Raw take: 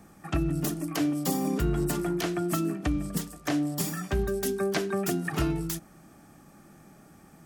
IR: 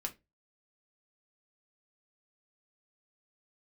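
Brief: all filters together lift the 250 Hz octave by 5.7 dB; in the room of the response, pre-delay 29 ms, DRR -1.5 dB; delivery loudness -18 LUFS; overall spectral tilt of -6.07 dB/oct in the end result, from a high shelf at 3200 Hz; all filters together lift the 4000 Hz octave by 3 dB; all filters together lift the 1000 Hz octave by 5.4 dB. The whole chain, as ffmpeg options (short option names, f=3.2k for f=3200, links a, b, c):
-filter_complex "[0:a]equalizer=f=250:t=o:g=7.5,equalizer=f=1k:t=o:g=7.5,highshelf=f=3.2k:g=-6.5,equalizer=f=4k:t=o:g=8.5,asplit=2[a][b];[1:a]atrim=start_sample=2205,adelay=29[c];[b][c]afir=irnorm=-1:irlink=0,volume=2dB[d];[a][d]amix=inputs=2:normalize=0,volume=4dB"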